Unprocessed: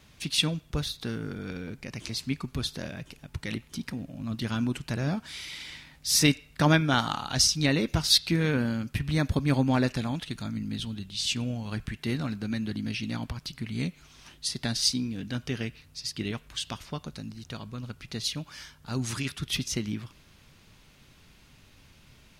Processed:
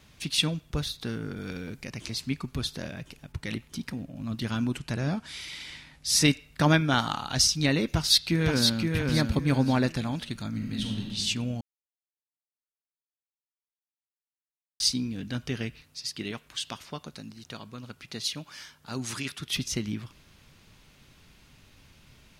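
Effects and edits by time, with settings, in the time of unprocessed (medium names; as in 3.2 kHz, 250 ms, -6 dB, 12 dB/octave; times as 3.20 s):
1.37–1.90 s: treble shelf 4 kHz +6 dB
3.32–4.16 s: tape noise reduction on one side only decoder only
4.79–6.28 s: steep low-pass 12 kHz
7.93–8.92 s: echo throw 520 ms, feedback 30%, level -3.5 dB
10.49–11.08 s: reverb throw, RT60 1.5 s, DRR 0 dB
11.61–14.80 s: mute
15.83–19.57 s: high-pass 230 Hz 6 dB/octave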